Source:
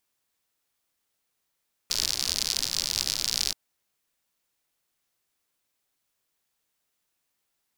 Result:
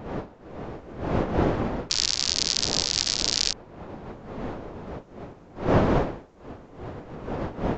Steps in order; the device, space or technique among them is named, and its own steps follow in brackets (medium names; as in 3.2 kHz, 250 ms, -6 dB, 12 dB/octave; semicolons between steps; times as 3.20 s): smartphone video outdoors (wind noise 530 Hz -37 dBFS; level rider gain up to 8.5 dB; AAC 64 kbps 16 kHz)